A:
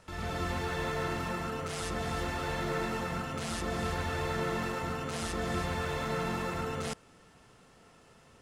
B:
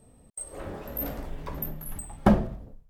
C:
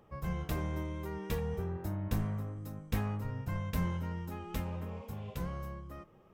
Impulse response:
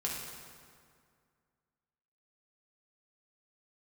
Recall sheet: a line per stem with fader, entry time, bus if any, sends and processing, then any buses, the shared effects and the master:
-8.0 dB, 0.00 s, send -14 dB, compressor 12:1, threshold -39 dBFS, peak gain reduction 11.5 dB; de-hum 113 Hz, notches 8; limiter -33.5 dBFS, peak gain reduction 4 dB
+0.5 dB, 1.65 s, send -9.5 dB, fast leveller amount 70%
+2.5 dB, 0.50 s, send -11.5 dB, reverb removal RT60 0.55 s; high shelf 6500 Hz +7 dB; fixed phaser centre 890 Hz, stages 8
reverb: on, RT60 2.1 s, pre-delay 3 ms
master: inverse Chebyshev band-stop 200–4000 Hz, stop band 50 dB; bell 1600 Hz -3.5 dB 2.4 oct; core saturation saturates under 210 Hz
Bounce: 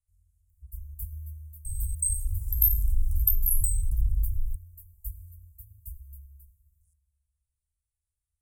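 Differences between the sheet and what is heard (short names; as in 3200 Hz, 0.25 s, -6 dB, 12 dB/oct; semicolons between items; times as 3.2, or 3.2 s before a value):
stem A -8.0 dB -> -17.5 dB; stem B: send off; master: missing core saturation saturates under 210 Hz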